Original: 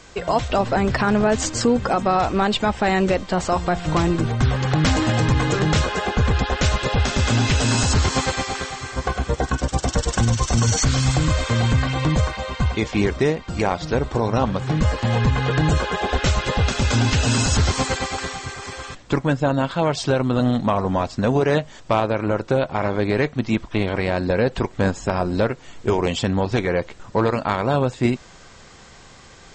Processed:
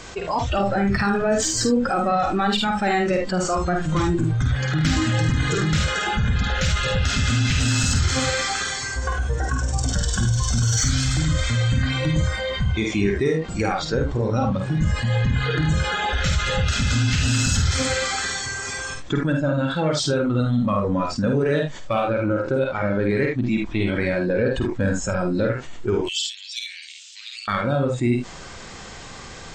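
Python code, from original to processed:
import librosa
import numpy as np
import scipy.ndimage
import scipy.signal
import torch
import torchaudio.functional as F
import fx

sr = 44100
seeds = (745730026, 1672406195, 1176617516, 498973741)

p1 = 10.0 ** (-16.5 / 20.0) * np.tanh(x / 10.0 ** (-16.5 / 20.0))
p2 = x + F.gain(torch.from_numpy(p1), -4.5).numpy()
p3 = fx.steep_highpass(p2, sr, hz=2700.0, slope=36, at=(26.01, 27.48))
p4 = p3 + fx.room_early_taps(p3, sr, ms=(50, 75), db=(-4.5, -7.5), dry=0)
p5 = fx.noise_reduce_blind(p4, sr, reduce_db=12)
p6 = fx.env_flatten(p5, sr, amount_pct=50)
y = F.gain(torch.from_numpy(p6), -8.5).numpy()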